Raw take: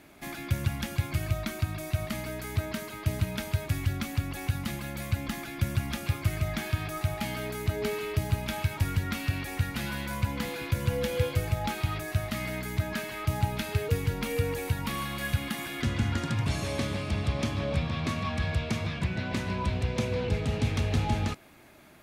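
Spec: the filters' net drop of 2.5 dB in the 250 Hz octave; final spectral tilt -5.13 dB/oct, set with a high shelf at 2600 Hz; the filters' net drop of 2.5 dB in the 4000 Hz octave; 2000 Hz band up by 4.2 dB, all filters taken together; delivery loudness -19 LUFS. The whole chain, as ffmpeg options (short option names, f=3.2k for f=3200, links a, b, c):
-af "equalizer=f=250:t=o:g=-3.5,equalizer=f=2k:t=o:g=6,highshelf=f=2.6k:g=3.5,equalizer=f=4k:t=o:g=-9,volume=12dB"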